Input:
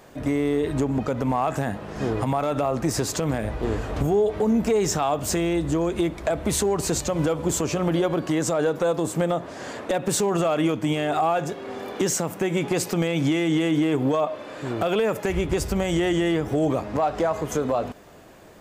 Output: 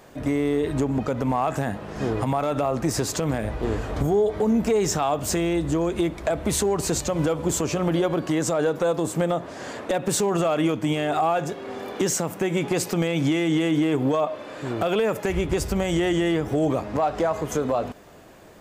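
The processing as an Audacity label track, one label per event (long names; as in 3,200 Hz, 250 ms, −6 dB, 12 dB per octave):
3.940000	4.390000	notch filter 2,700 Hz, Q 7.4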